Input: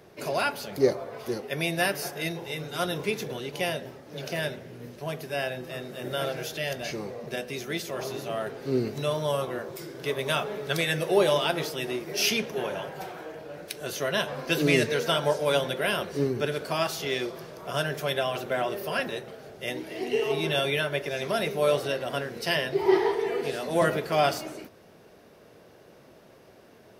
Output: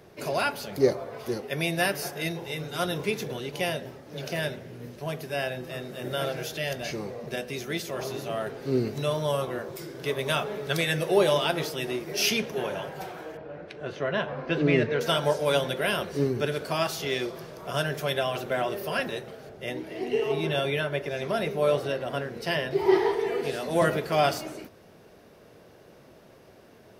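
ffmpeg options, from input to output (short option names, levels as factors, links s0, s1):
-filter_complex "[0:a]asettb=1/sr,asplit=3[s0][s1][s2];[s0]atrim=end=13.374[s3];[s1]atrim=start=13.37:end=15.01,asetpts=PTS-STARTPTS,afade=t=in:d=0.004:c=qsin,afade=t=out:st=1.636:d=0.004:c=qsin,lowpass=2200[s4];[s2]atrim=start=15.006[s5];[s3][s4]acrossfade=d=0.004:c1=hsin:c2=qsin[s6];[s6][s5]acrossfade=d=0.004:c1=qsin:c2=hsin,asettb=1/sr,asplit=3[s7][s8][s9];[s7]atrim=end=19.494[s10];[s8]atrim=start=19.49:end=22.71,asetpts=PTS-STARTPTS,afade=t=in:d=0.004:c=qsin,afade=t=out:st=3.216:d=0.004:c=qsin,highshelf=f=2900:g=-7[s11];[s9]atrim=start=22.706[s12];[s10][s11]acrossfade=d=0.004:c1=hsin:c2=qsin[s13];[s13][s12]acrossfade=d=0.004:c1=qsin:c2=hsin,lowshelf=f=120:g=4.5"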